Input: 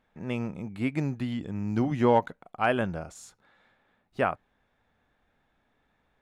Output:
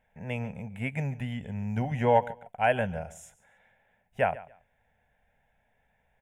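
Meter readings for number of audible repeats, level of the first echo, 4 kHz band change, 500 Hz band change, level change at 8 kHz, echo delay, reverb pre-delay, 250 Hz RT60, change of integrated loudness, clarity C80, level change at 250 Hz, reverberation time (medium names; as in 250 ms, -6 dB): 2, -18.5 dB, -2.0 dB, 0.0 dB, -1.5 dB, 141 ms, no reverb, no reverb, -1.0 dB, no reverb, -6.0 dB, no reverb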